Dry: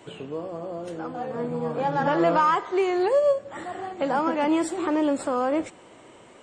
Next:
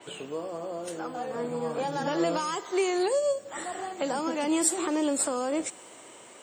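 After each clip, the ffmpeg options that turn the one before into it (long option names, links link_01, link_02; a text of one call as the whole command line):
ffmpeg -i in.wav -filter_complex "[0:a]aemphasis=mode=production:type=bsi,acrossover=split=500|3000[link_01][link_02][link_03];[link_02]acompressor=threshold=-33dB:ratio=6[link_04];[link_01][link_04][link_03]amix=inputs=3:normalize=0,adynamicequalizer=threshold=0.00447:dfrequency=5500:dqfactor=0.7:tfrequency=5500:tqfactor=0.7:attack=5:release=100:ratio=0.375:range=2.5:mode=boostabove:tftype=highshelf" out.wav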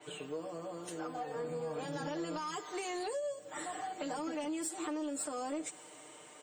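ffmpeg -i in.wav -af "aecho=1:1:6.6:0.92,acompressor=threshold=-26dB:ratio=10,asoftclip=type=tanh:threshold=-21.5dB,volume=-7.5dB" out.wav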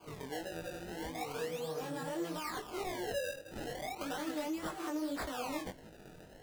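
ffmpeg -i in.wav -af "acrusher=samples=23:mix=1:aa=0.000001:lfo=1:lforange=36.8:lforate=0.37,flanger=delay=18.5:depth=4.7:speed=1.7,volume=2.5dB" out.wav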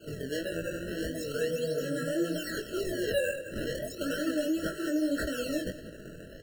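ffmpeg -i in.wav -af "aecho=1:1:194|388|582|776:0.141|0.0607|0.0261|0.0112,afftfilt=real='re*eq(mod(floor(b*sr/1024/650),2),0)':imag='im*eq(mod(floor(b*sr/1024/650),2),0)':win_size=1024:overlap=0.75,volume=8.5dB" out.wav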